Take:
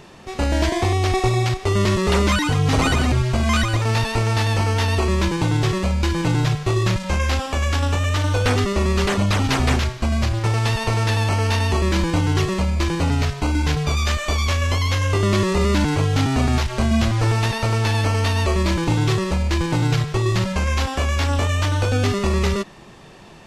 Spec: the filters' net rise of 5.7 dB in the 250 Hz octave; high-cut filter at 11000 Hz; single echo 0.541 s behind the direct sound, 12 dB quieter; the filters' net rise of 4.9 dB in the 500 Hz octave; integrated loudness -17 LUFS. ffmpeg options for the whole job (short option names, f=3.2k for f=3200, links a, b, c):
-af "lowpass=11k,equalizer=f=250:t=o:g=6.5,equalizer=f=500:t=o:g=4,aecho=1:1:541:0.251,volume=0.5dB"